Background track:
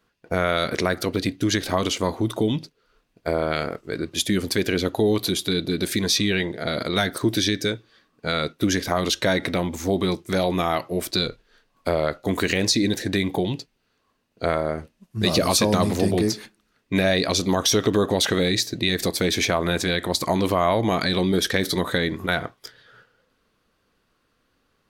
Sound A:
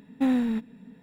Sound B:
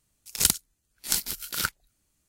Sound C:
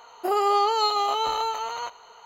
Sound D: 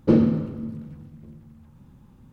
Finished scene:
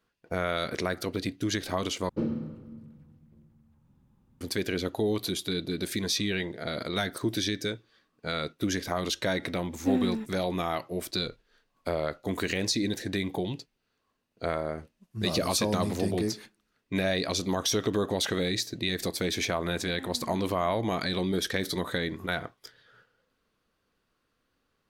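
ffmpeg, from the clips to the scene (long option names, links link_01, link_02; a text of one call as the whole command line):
ffmpeg -i bed.wav -i cue0.wav -i cue1.wav -i cue2.wav -i cue3.wav -filter_complex "[1:a]asplit=2[link_01][link_02];[0:a]volume=-7.5dB[link_03];[link_01]asplit=2[link_04][link_05];[link_05]adelay=6.2,afreqshift=-2.3[link_06];[link_04][link_06]amix=inputs=2:normalize=1[link_07];[link_02]acompressor=threshold=-37dB:ratio=6:attack=3.2:release=140:knee=1:detection=peak[link_08];[link_03]asplit=2[link_09][link_10];[link_09]atrim=end=2.094[link_11];[4:a]atrim=end=2.32,asetpts=PTS-STARTPTS,volume=-13dB[link_12];[link_10]atrim=start=4.406[link_13];[link_07]atrim=end=1.02,asetpts=PTS-STARTPTS,volume=-3dB,afade=type=in:duration=0.004:curve=hsin,afade=type=out:start_time=1.016:duration=0.004:curve=hsin,adelay=9650[link_14];[link_08]atrim=end=1.02,asetpts=PTS-STARTPTS,volume=-5dB,afade=type=in:duration=0.004:curve=hsin,afade=type=out:start_time=1.016:duration=0.004:curve=hsin,adelay=19780[link_15];[link_11][link_12]acrossfade=duration=0.004:curve1=hsin:curve2=hsin[link_16];[link_16][link_13]acrossfade=duration=0.004:curve1=hsin:curve2=hsin[link_17];[link_17][link_14][link_15]amix=inputs=3:normalize=0" out.wav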